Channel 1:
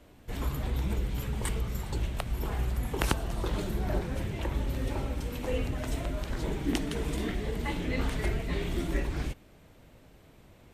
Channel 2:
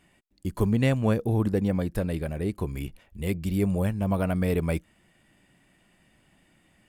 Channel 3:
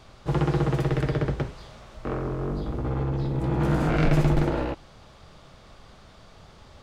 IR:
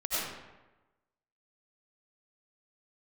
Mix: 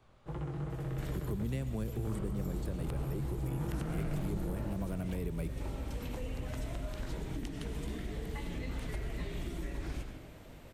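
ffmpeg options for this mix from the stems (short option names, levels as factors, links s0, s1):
-filter_complex "[0:a]acompressor=threshold=0.0141:ratio=6,adelay=700,volume=1.19,asplit=2[s0][s1];[s1]volume=0.237[s2];[1:a]highpass=f=110:w=0.5412,highpass=f=110:w=1.3066,equalizer=f=370:w=3.9:g=7.5,adelay=700,volume=0.501,asplit=2[s3][s4];[s4]volume=0.0891[s5];[2:a]equalizer=f=5100:w=1.2:g=-8.5,dynaudnorm=f=300:g=9:m=3.76,flanger=delay=17:depth=6.8:speed=2.7,volume=0.266,asplit=2[s6][s7];[s7]volume=0.168[s8];[3:a]atrim=start_sample=2205[s9];[s2][s5][s8]amix=inputs=3:normalize=0[s10];[s10][s9]afir=irnorm=-1:irlink=0[s11];[s0][s3][s6][s11]amix=inputs=4:normalize=0,acrossover=split=190|5000[s12][s13][s14];[s12]acompressor=threshold=0.02:ratio=4[s15];[s13]acompressor=threshold=0.00708:ratio=4[s16];[s14]acompressor=threshold=0.00158:ratio=4[s17];[s15][s16][s17]amix=inputs=3:normalize=0"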